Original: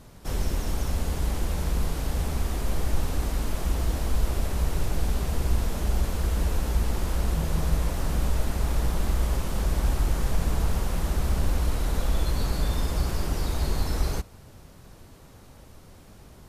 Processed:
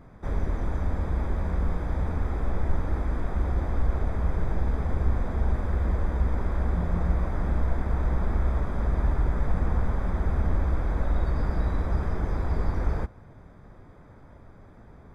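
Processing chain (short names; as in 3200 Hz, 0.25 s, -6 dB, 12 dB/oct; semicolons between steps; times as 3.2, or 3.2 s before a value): CVSD 64 kbps; polynomial smoothing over 41 samples; speed mistake 44.1 kHz file played as 48 kHz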